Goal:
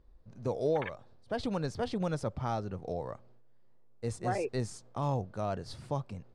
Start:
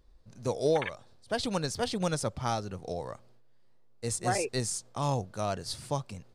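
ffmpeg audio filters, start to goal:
ffmpeg -i in.wav -filter_complex "[0:a]lowpass=frequency=1300:poles=1,asplit=2[link_01][link_02];[link_02]alimiter=level_in=2dB:limit=-24dB:level=0:latency=1:release=39,volume=-2dB,volume=2dB[link_03];[link_01][link_03]amix=inputs=2:normalize=0,volume=-6.5dB" out.wav

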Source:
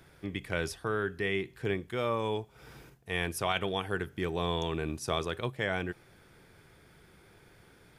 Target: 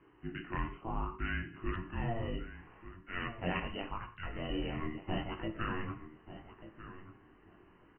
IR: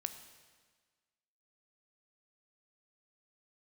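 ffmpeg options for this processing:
-filter_complex "[0:a]asettb=1/sr,asplit=3[link_01][link_02][link_03];[link_01]atrim=end=2.374[link_04];[link_02]atrim=start=2.37:end=4.5,asetpts=PTS-STARTPTS,afade=type=in:duration=0.004:curve=qsin,afade=type=out:start_time=2.126:duration=0.004:curve=qsin,highpass=frequency=420:width=0.5412,highpass=frequency=420:width=1.3066[link_05];[link_03]atrim=start=4.496[link_06];[link_04][link_05]acrossfade=duration=0.004:curve1=hsin:curve2=qsin[link_07];[link_07][link_06]acrossfade=duration=0.004:curve1=qsin:curve2=hsin,afreqshift=-460,flanger=delay=18:depth=4.8:speed=0.72,asuperstop=centerf=4900:order=20:qfactor=0.98,asplit=2[link_08][link_09];[link_09]adelay=28,volume=-14dB[link_10];[link_08][link_10]amix=inputs=2:normalize=0,asplit=2[link_11][link_12];[link_12]adelay=1189,lowpass=frequency=2200:poles=1,volume=-13dB,asplit=2[link_13][link_14];[link_14]adelay=1189,lowpass=frequency=2200:poles=1,volume=0.16[link_15];[link_11][link_13][link_15]amix=inputs=3:normalize=0[link_16];[1:a]atrim=start_sample=2205,afade=type=out:start_time=0.22:duration=0.01,atrim=end_sample=10143,asetrate=57330,aresample=44100[link_17];[link_16][link_17]afir=irnorm=-1:irlink=0,volume=2dB" -ar 24000 -c:a aac -b:a 16k

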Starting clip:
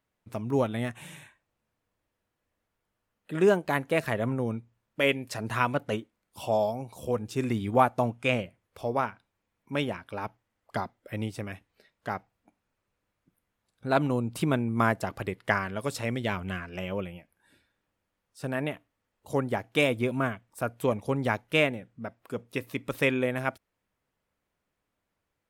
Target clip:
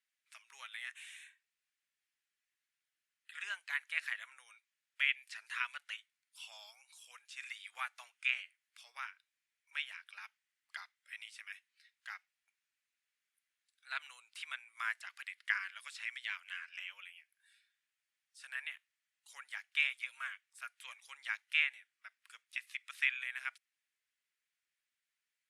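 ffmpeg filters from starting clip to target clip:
ffmpeg -i in.wav -filter_complex "[0:a]asuperpass=centerf=4600:order=8:qfactor=0.51,acrossover=split=3500[link_01][link_02];[link_02]acompressor=threshold=-52dB:ratio=4:attack=1:release=60[link_03];[link_01][link_03]amix=inputs=2:normalize=0,volume=-2dB" -ar 48000 -c:a libopus -b:a 64k out.opus

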